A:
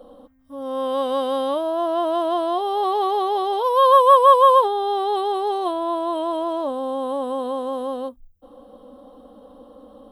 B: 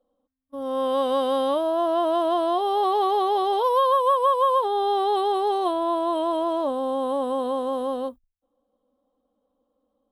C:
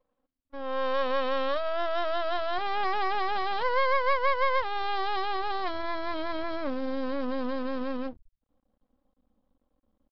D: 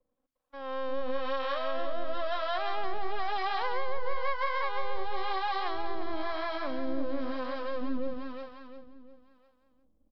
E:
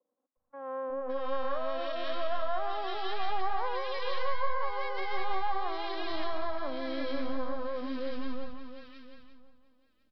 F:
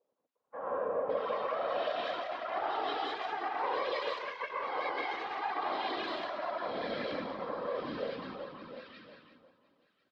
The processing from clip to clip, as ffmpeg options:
-af "agate=range=0.0398:threshold=0.0141:ratio=16:detection=peak,acompressor=threshold=0.158:ratio=12"
-af "asubboost=boost=9.5:cutoff=140,aresample=11025,aeval=exprs='max(val(0),0)':c=same,aresample=44100"
-filter_complex "[0:a]asplit=2[s0][s1];[s1]aecho=0:1:352|704|1056|1408|1760:0.668|0.274|0.112|0.0461|0.0189[s2];[s0][s2]amix=inputs=2:normalize=0,acrossover=split=140[s3][s4];[s4]acompressor=threshold=0.0501:ratio=5[s5];[s3][s5]amix=inputs=2:normalize=0,acrossover=split=560[s6][s7];[s6]aeval=exprs='val(0)*(1-0.7/2+0.7/2*cos(2*PI*1*n/s))':c=same[s8];[s7]aeval=exprs='val(0)*(1-0.7/2-0.7/2*cos(2*PI*1*n/s))':c=same[s9];[s8][s9]amix=inputs=2:normalize=0"
-filter_complex "[0:a]acrossover=split=220|1600[s0][s1][s2];[s0]adelay=360[s3];[s2]adelay=560[s4];[s3][s1][s4]amix=inputs=3:normalize=0"
-af "aeval=exprs='0.141*sin(PI/2*1.78*val(0)/0.141)':c=same,highpass=350,lowpass=4400,afftfilt=real='hypot(re,im)*cos(2*PI*random(0))':imag='hypot(re,im)*sin(2*PI*random(1))':win_size=512:overlap=0.75"

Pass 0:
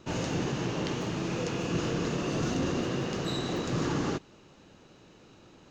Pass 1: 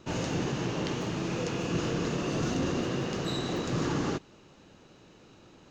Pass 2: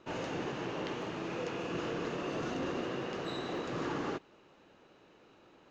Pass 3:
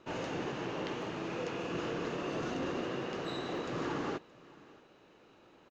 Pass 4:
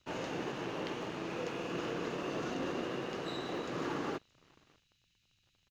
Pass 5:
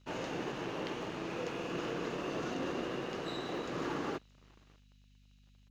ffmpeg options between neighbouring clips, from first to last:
-af anull
-af "bass=f=250:g=-11,treble=f=4000:g=-12,volume=0.75"
-af "aecho=1:1:623:0.0794"
-filter_complex "[0:a]acrossover=split=120|2900[s0][s1][s2];[s0]alimiter=level_in=35.5:limit=0.0631:level=0:latency=1,volume=0.0282[s3];[s1]aeval=exprs='sgn(val(0))*max(abs(val(0))-0.00188,0)':c=same[s4];[s3][s4][s2]amix=inputs=3:normalize=0"
-af "aeval=exprs='val(0)+0.000794*(sin(2*PI*50*n/s)+sin(2*PI*2*50*n/s)/2+sin(2*PI*3*50*n/s)/3+sin(2*PI*4*50*n/s)/4+sin(2*PI*5*50*n/s)/5)':c=same"

